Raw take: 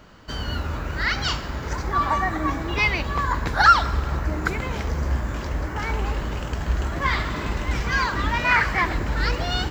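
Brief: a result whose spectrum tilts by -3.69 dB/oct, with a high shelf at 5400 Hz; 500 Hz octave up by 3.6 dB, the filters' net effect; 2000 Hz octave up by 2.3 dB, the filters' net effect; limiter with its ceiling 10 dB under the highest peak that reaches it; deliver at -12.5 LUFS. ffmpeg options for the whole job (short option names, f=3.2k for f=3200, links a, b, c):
-af "equalizer=f=500:t=o:g=4.5,equalizer=f=2k:t=o:g=3.5,highshelf=f=5.4k:g=-7.5,volume=12dB,alimiter=limit=-1dB:level=0:latency=1"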